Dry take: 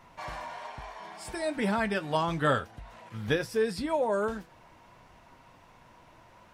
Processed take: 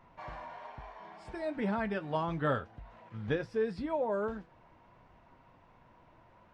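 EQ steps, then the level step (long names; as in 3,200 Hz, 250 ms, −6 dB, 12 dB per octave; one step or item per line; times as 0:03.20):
head-to-tape spacing loss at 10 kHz 25 dB
−3.0 dB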